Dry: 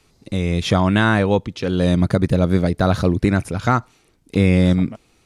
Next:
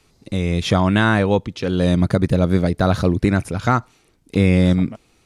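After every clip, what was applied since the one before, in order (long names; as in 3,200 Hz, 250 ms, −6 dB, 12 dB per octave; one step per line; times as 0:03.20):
no processing that can be heard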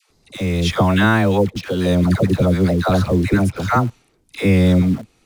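all-pass dispersion lows, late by 97 ms, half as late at 700 Hz
in parallel at −10.5 dB: bit reduction 5 bits
on the sum: level −1 dB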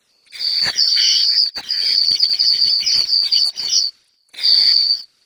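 band-splitting scrambler in four parts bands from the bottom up 4321
random phases in short frames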